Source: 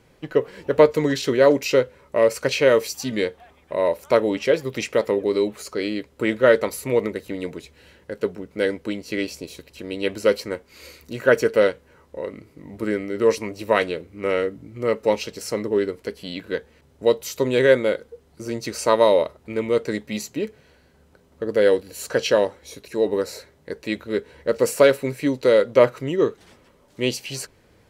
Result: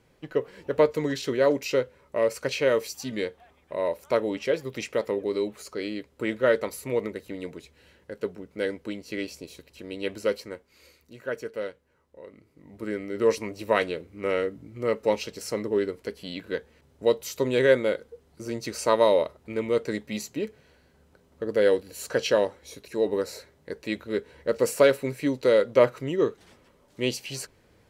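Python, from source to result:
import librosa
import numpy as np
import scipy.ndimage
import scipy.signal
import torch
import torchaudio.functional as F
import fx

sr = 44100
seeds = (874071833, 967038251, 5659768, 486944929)

y = fx.gain(x, sr, db=fx.line((10.16, -6.5), (11.17, -15.5), (12.19, -15.5), (13.21, -4.0)))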